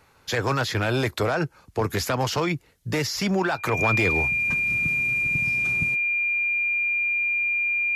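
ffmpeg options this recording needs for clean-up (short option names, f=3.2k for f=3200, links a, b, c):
-af "bandreject=f=2.4k:w=30"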